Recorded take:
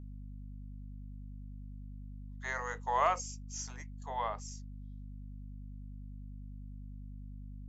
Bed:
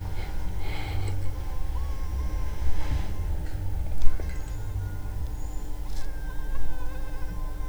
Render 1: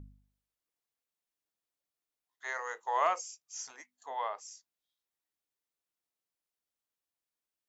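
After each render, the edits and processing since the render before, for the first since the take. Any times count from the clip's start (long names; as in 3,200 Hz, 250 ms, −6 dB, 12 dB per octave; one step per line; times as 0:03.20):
hum removal 50 Hz, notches 5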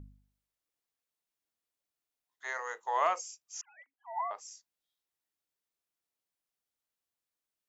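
0:03.61–0:04.31: three sine waves on the formant tracks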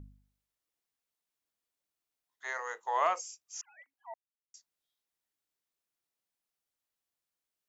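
0:04.14–0:04.54: silence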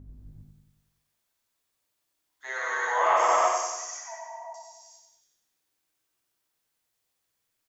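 repeating echo 94 ms, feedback 55%, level −4.5 dB
reverb whose tail is shaped and stops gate 430 ms flat, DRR −8 dB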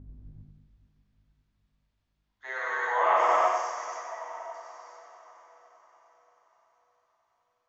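high-frequency loss of the air 180 metres
feedback delay with all-pass diffusion 488 ms, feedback 52%, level −15 dB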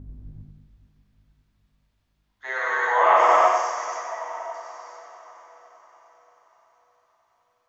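level +6.5 dB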